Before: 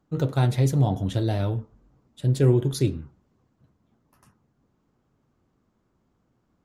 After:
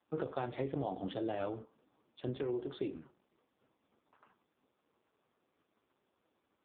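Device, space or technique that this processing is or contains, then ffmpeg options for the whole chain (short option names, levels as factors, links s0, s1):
voicemail: -filter_complex "[0:a]asplit=3[s0][s1][s2];[s0]afade=t=out:st=2.43:d=0.02[s3];[s1]lowshelf=f=260:g=-5,afade=t=in:st=2.43:d=0.02,afade=t=out:st=2.88:d=0.02[s4];[s2]afade=t=in:st=2.88:d=0.02[s5];[s3][s4][s5]amix=inputs=3:normalize=0,highpass=380,lowpass=3300,acompressor=threshold=0.0251:ratio=12,volume=1.12" -ar 8000 -c:a libopencore_amrnb -b:a 4750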